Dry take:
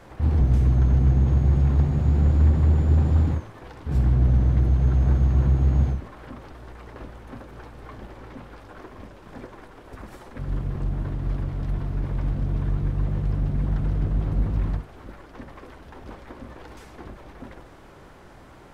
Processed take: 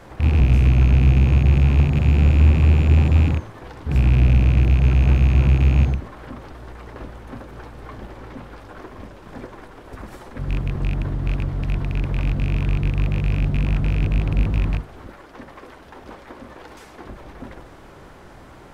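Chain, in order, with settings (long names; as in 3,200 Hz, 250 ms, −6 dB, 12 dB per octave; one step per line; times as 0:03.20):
loose part that buzzes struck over −20 dBFS, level −25 dBFS
0:15.07–0:17.09: low-shelf EQ 180 Hz −9.5 dB
level +4 dB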